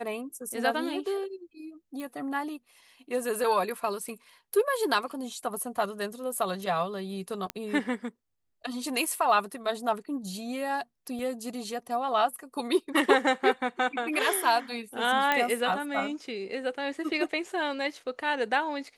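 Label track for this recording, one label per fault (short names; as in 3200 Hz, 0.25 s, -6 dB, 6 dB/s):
2.000000	2.000000	pop -26 dBFS
7.500000	7.500000	pop -16 dBFS
11.190000	11.190000	gap 2 ms
15.320000	15.320000	pop -11 dBFS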